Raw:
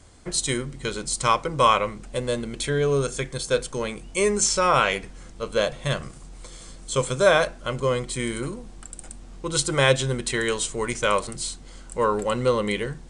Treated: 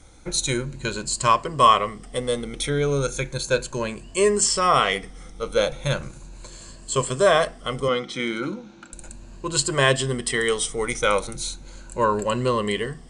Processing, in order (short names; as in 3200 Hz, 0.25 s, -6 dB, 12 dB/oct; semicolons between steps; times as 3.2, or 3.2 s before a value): moving spectral ripple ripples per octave 1.4, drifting +0.36 Hz, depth 10 dB; 7.88–8.93 speaker cabinet 190–5800 Hz, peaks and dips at 200 Hz +7 dB, 310 Hz +6 dB, 440 Hz -4 dB, 1400 Hz +6 dB, 3000 Hz +5 dB